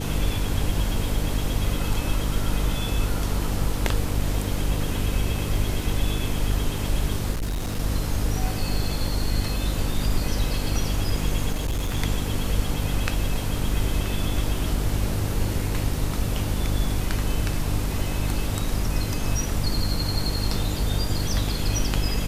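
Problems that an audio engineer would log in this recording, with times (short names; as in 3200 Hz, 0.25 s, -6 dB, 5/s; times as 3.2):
hum 50 Hz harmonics 6 -28 dBFS
7.31–7.8 clipped -23.5 dBFS
11.52–11.97 clipped -21.5 dBFS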